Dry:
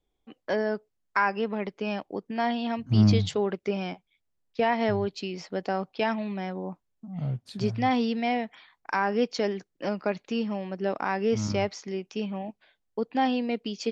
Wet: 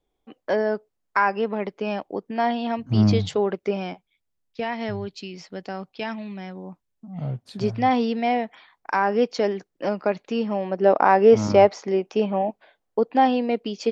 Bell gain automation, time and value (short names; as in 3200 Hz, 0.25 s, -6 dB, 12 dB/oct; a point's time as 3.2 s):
bell 640 Hz 2.6 oct
3.69 s +5.5 dB
4.69 s -5 dB
6.71 s -5 dB
7.25 s +6 dB
10.31 s +6 dB
11.01 s +15 dB
12.46 s +15 dB
13.3 s +8 dB